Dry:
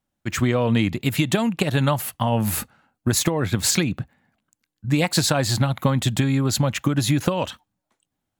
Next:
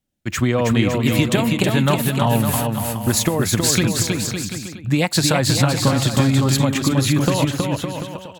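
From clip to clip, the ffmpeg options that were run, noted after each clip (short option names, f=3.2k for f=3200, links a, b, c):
-filter_complex "[0:a]acrossover=split=720|1600[a][b][c];[b]aeval=exprs='sgn(val(0))*max(abs(val(0))-0.00126,0)':c=same[d];[a][d][c]amix=inputs=3:normalize=0,aecho=1:1:320|560|740|875|976.2:0.631|0.398|0.251|0.158|0.1,volume=2dB"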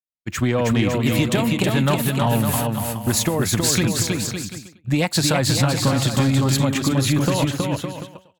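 -af "acontrast=65,agate=range=-33dB:threshold=-15dB:ratio=3:detection=peak,volume=-7dB"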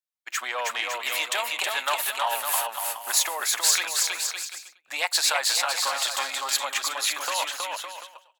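-af "highpass=f=770:w=0.5412,highpass=f=770:w=1.3066"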